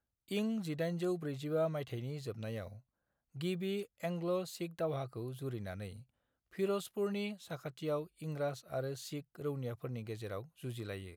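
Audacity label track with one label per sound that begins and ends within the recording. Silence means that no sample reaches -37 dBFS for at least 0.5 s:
3.410000	5.860000	sound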